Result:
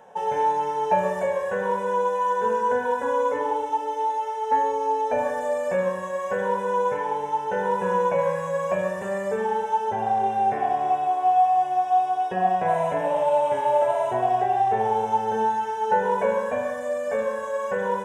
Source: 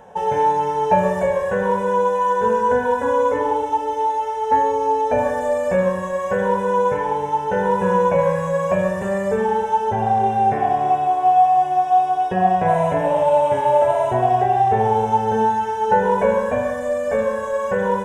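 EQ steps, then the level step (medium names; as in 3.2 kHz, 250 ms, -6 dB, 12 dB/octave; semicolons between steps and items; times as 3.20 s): high-pass 330 Hz 6 dB/octave; -4.0 dB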